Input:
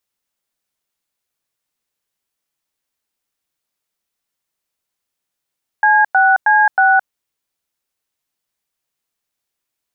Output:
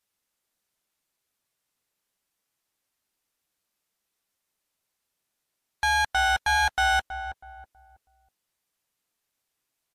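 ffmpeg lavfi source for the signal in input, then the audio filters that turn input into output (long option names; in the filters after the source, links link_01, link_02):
-f lavfi -i "aevalsrc='0.282*clip(min(mod(t,0.316),0.217-mod(t,0.316))/0.002,0,1)*(eq(floor(t/0.316),0)*(sin(2*PI*852*mod(t,0.316))+sin(2*PI*1633*mod(t,0.316)))+eq(floor(t/0.316),1)*(sin(2*PI*770*mod(t,0.316))+sin(2*PI*1477*mod(t,0.316)))+eq(floor(t/0.316),2)*(sin(2*PI*852*mod(t,0.316))+sin(2*PI*1633*mod(t,0.316)))+eq(floor(t/0.316),3)*(sin(2*PI*770*mod(t,0.316))+sin(2*PI*1477*mod(t,0.316))))':duration=1.264:sample_rate=44100"
-filter_complex "[0:a]asoftclip=type=tanh:threshold=-20.5dB,asplit=2[link_01][link_02];[link_02]adelay=323,lowpass=frequency=930:poles=1,volume=-8dB,asplit=2[link_03][link_04];[link_04]adelay=323,lowpass=frequency=930:poles=1,volume=0.39,asplit=2[link_05][link_06];[link_06]adelay=323,lowpass=frequency=930:poles=1,volume=0.39,asplit=2[link_07][link_08];[link_08]adelay=323,lowpass=frequency=930:poles=1,volume=0.39[link_09];[link_01][link_03][link_05][link_07][link_09]amix=inputs=5:normalize=0" -ar 32000 -c:a libmp3lame -b:a 64k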